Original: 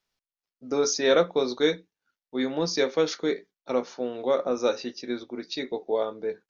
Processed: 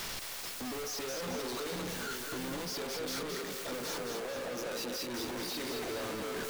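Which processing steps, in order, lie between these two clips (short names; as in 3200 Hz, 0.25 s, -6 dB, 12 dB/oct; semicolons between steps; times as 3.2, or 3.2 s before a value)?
zero-crossing step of -25.5 dBFS; 2.65–5.14 HPF 120 Hz 12 dB/oct; overloaded stage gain 33 dB; split-band echo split 460 Hz, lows 0.669 s, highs 0.218 s, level -4.5 dB; gain -6 dB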